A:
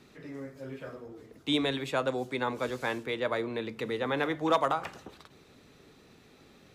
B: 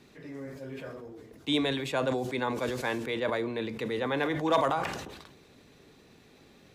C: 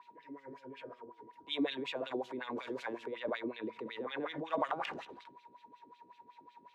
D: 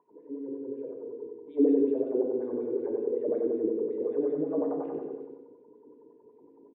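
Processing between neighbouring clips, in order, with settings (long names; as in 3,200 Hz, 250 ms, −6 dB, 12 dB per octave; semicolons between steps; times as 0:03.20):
notch filter 1,300 Hz, Q 11; level that may fall only so fast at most 47 dB per second
steady tone 960 Hz −46 dBFS; transient designer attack −3 dB, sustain +7 dB; LFO wah 5.4 Hz 270–3,300 Hz, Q 2.6; level −1.5 dB
low-pass with resonance 420 Hz, resonance Q 4.9; repeating echo 94 ms, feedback 50%, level −5.5 dB; feedback delay network reverb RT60 1 s, low-frequency decay 0.95×, high-frequency decay 0.55×, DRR 4 dB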